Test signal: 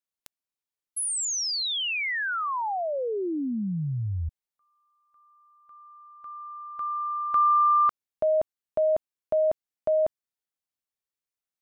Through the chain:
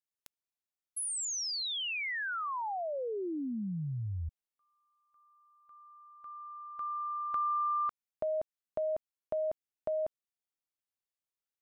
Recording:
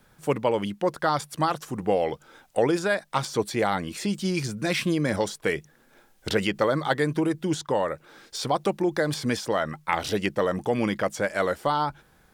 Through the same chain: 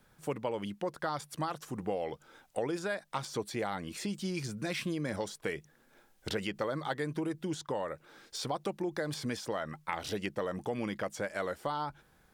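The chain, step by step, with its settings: compressor 2:1, threshold -28 dBFS; gain -6 dB

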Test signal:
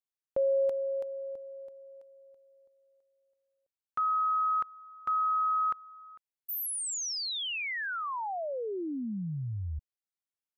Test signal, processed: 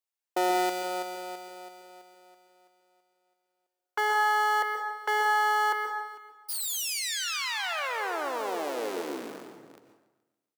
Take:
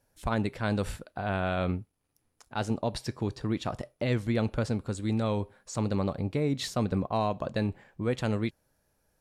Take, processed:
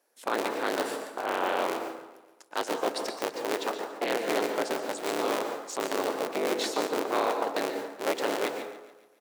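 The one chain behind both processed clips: cycle switcher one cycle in 3, inverted; HPF 330 Hz 24 dB/oct; on a send: feedback echo 0.141 s, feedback 52%, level -17 dB; on the sum: plate-style reverb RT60 0.86 s, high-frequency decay 0.5×, pre-delay 0.11 s, DRR 5.5 dB; gain +2 dB

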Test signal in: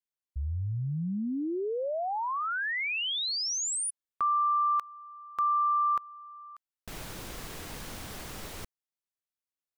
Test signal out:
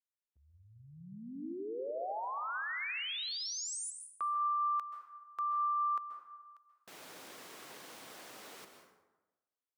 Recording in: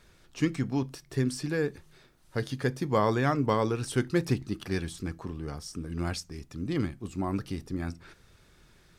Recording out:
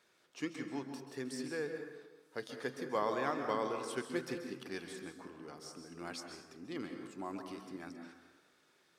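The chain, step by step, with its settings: HPF 340 Hz 12 dB/oct; high shelf 8500 Hz -3 dB; plate-style reverb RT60 1.1 s, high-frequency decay 0.55×, pre-delay 0.12 s, DRR 5 dB; gain -8 dB

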